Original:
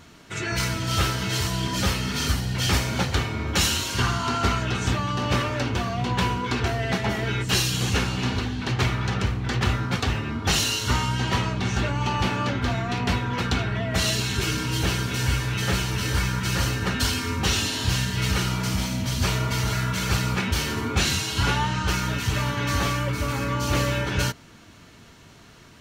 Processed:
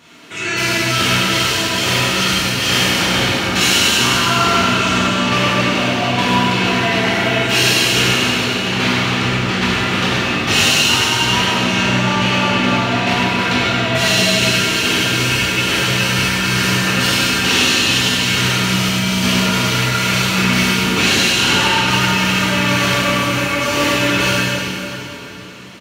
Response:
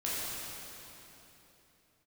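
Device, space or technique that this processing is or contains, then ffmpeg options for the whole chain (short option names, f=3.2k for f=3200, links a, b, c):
PA in a hall: -filter_complex "[0:a]highpass=190,equalizer=f=2.7k:t=o:w=0.79:g=6,aecho=1:1:101:0.447[a];[1:a]atrim=start_sample=2205[b];[a][b]afir=irnorm=-1:irlink=0,volume=2.5dB"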